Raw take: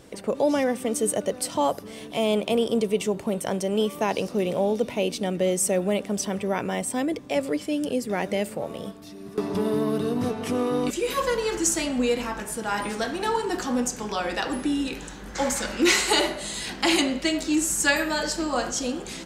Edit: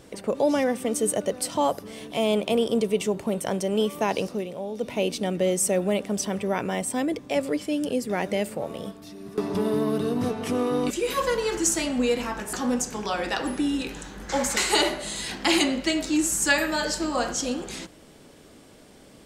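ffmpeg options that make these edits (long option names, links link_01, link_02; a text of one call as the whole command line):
ffmpeg -i in.wav -filter_complex "[0:a]asplit=5[link_01][link_02][link_03][link_04][link_05];[link_01]atrim=end=4.48,asetpts=PTS-STARTPTS,afade=type=out:start_time=4.24:duration=0.24:silence=0.334965[link_06];[link_02]atrim=start=4.48:end=4.72,asetpts=PTS-STARTPTS,volume=-9.5dB[link_07];[link_03]atrim=start=4.72:end=12.532,asetpts=PTS-STARTPTS,afade=type=in:duration=0.24:silence=0.334965[link_08];[link_04]atrim=start=13.588:end=15.632[link_09];[link_05]atrim=start=15.948[link_10];[link_06][link_07][link_08]concat=n=3:v=0:a=1[link_11];[link_11][link_09]acrossfade=duration=0.004:curve1=hsin:curve2=hsin[link_12];[link_12][link_10]acrossfade=duration=0.004:curve1=hsin:curve2=hsin" out.wav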